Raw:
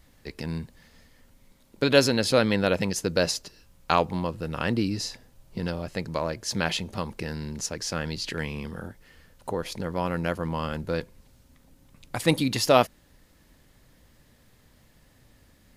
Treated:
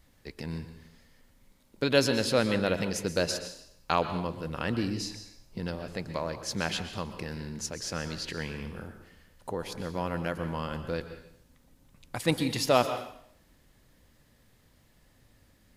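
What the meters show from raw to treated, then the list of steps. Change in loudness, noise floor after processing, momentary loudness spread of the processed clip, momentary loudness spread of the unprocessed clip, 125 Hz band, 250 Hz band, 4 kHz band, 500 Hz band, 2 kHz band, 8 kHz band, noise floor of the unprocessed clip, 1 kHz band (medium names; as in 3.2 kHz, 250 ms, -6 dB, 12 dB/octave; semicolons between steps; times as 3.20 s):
-4.0 dB, -63 dBFS, 17 LU, 14 LU, -4.0 dB, -4.0 dB, -4.0 dB, -4.0 dB, -4.0 dB, -4.0 dB, -60 dBFS, -4.0 dB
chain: plate-style reverb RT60 0.67 s, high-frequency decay 1×, pre-delay 110 ms, DRR 9 dB; trim -4.5 dB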